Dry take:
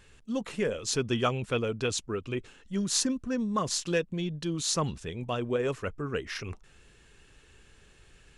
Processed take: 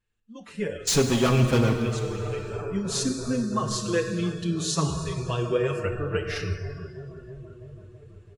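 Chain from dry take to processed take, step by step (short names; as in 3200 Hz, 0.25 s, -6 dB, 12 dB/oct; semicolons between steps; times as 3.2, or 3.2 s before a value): 0.87–1.74 sample leveller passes 5; tone controls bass +4 dB, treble -2 dB; dark delay 0.332 s, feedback 81%, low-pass 1400 Hz, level -14.5 dB; on a send at -5 dB: reverb RT60 2.4 s, pre-delay 17 ms; on the sum: spectral noise reduction 15 dB; AGC gain up to 15 dB; endless flanger 6.1 ms -0.51 Hz; gain -8 dB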